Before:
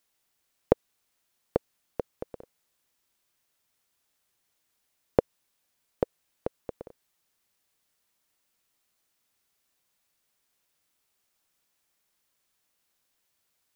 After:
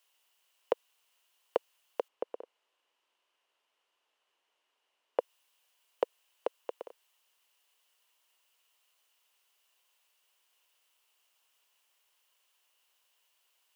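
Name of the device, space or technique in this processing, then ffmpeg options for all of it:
laptop speaker: -filter_complex "[0:a]asettb=1/sr,asplit=3[s0][s1][s2];[s0]atrim=end=2.084[s3];[s1]atrim=start=2.08:end=5.19,asetpts=PTS-STARTPTS,afade=t=in:d=0.004:c=qsin,afade=t=out:st=3.106:d=0.004:c=qsin,aemphasis=mode=reproduction:type=riaa[s4];[s2]atrim=start=5.186[s5];[s3][s4]acrossfade=d=0.004:c1=hsin:c2=qsin[s6];[s6][s5]acrossfade=d=0.004:c1=qsin:c2=hsin,highpass=f=420:w=0.5412,highpass=f=420:w=1.3066,equalizer=f=1000:t=o:w=0.34:g=6,equalizer=f=2900:t=o:w=0.3:g=12,alimiter=limit=0.178:level=0:latency=1:release=15,volume=1.12"

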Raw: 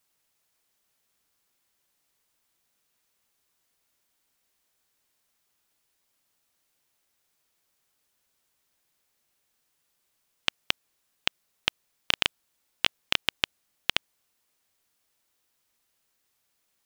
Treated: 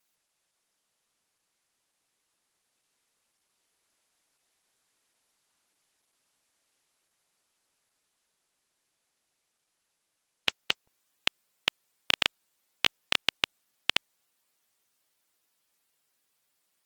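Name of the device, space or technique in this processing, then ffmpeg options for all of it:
video call: -af "highpass=f=140:p=1,dynaudnorm=f=560:g=11:m=1.5" -ar 48000 -c:a libopus -b:a 16k

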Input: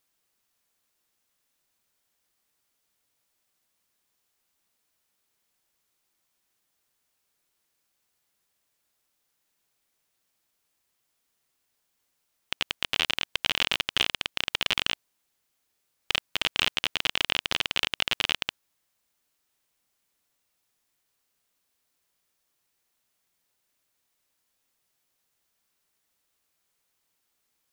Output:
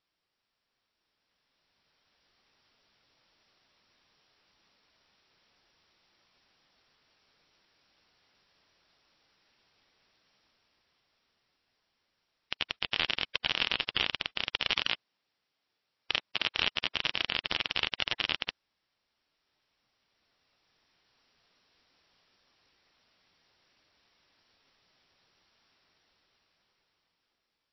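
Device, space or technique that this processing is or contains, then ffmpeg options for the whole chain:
low-bitrate web radio: -filter_complex "[0:a]asettb=1/sr,asplit=3[s0][s1][s2];[s0]atrim=end=14.724[s3];[s1]atrim=start=14.72:end=16.58,asetpts=PTS-STARTPTS,afade=t=in:d=0.004:c=qsin,afade=t=out:st=1.856:d=0.004:c=qsin,highpass=f=140:p=1[s4];[s2]atrim=start=16.576[s5];[s3][s4]acrossfade=d=0.004:c1=hsin:c2=qsin[s6];[s6][s5]acrossfade=d=0.004:c1=qsin:c2=hsin,dynaudnorm=f=330:g=11:m=5.01,alimiter=limit=0.422:level=0:latency=1:release=63,volume=0.75" -ar 16000 -c:a libmp3lame -b:a 24k

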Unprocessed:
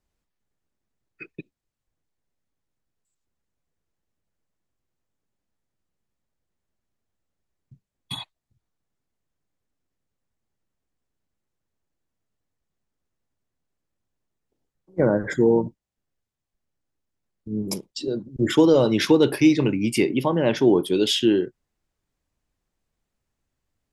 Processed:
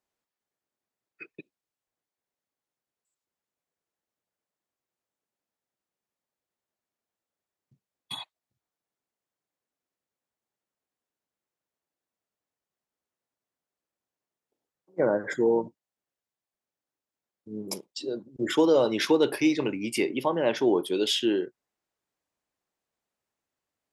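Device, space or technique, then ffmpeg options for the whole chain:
filter by subtraction: -filter_complex "[0:a]asplit=2[s0][s1];[s1]lowpass=640,volume=-1[s2];[s0][s2]amix=inputs=2:normalize=0,volume=0.631"

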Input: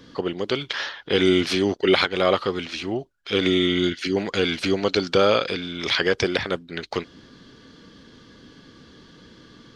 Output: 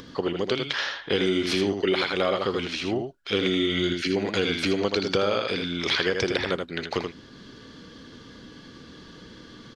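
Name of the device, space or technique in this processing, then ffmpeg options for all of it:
upward and downward compression: -af "aecho=1:1:80:0.473,acompressor=mode=upward:threshold=0.01:ratio=2.5,acompressor=threshold=0.1:ratio=6"

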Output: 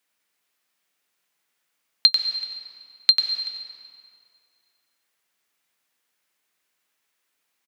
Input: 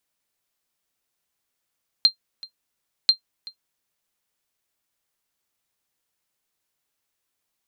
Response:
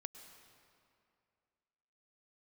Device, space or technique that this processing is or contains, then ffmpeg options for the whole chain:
PA in a hall: -filter_complex "[0:a]highpass=160,equalizer=f=2000:t=o:w=1.5:g=6,aecho=1:1:93:0.422[s0];[1:a]atrim=start_sample=2205[s1];[s0][s1]afir=irnorm=-1:irlink=0,volume=2.11"

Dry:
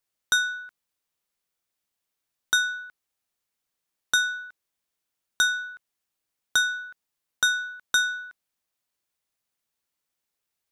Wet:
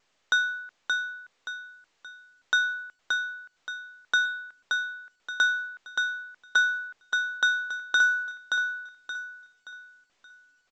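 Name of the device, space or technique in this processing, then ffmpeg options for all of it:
telephone: -filter_complex "[0:a]asettb=1/sr,asplit=3[s0][s1][s2];[s0]atrim=end=2.734[s3];[s1]atrim=start=2.73:end=4.21,asetpts=PTS-STARTPTS,afade=t=in:d=0.004:c=qsin,afade=t=out:st=1.476:d=0.004:c=qsin,highshelf=f=7100:g=-2[s4];[s2]atrim=start=4.206[s5];[s3][s4]acrossfade=d=0.004:c1=hsin:c2=qsin[s6];[s6][s5]acrossfade=d=0.004:c1=qsin:c2=hsin,aecho=1:1:575|1150|1725|2300|2875:0.631|0.227|0.0818|0.0294|0.0106,adynamicequalizer=threshold=0.00708:dfrequency=3600:dqfactor=6:tfrequency=3600:tqfactor=6:attack=5:release=100:ratio=0.375:range=3.5:mode=cutabove:tftype=bell,highpass=310,lowpass=3400" -ar 16000 -c:a pcm_alaw

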